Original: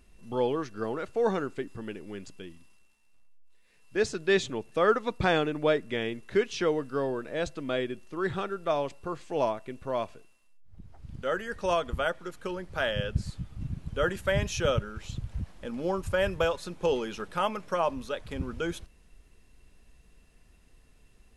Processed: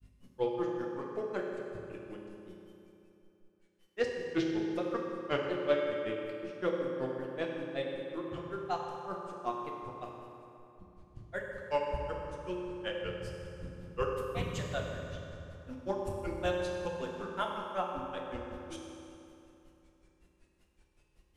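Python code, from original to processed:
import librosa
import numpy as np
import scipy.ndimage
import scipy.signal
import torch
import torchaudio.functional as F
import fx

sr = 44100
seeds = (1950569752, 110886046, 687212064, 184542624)

y = fx.add_hum(x, sr, base_hz=50, snr_db=12)
y = fx.hum_notches(y, sr, base_hz=50, count=8)
y = fx.granulator(y, sr, seeds[0], grain_ms=109.0, per_s=5.3, spray_ms=21.0, spread_st=3)
y = fx.rev_fdn(y, sr, rt60_s=3.0, lf_ratio=1.0, hf_ratio=0.65, size_ms=17.0, drr_db=-1.5)
y = fx.doppler_dist(y, sr, depth_ms=0.21)
y = y * 10.0 ** (-4.5 / 20.0)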